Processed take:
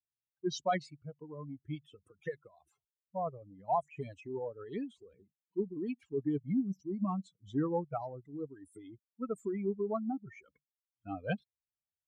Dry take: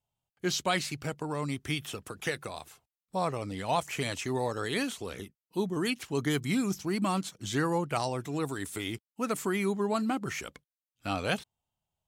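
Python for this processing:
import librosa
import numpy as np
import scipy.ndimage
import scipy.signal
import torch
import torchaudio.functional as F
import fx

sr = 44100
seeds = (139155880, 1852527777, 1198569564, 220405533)

y = fx.spec_expand(x, sr, power=2.9)
y = fx.upward_expand(y, sr, threshold_db=-41.0, expansion=2.5)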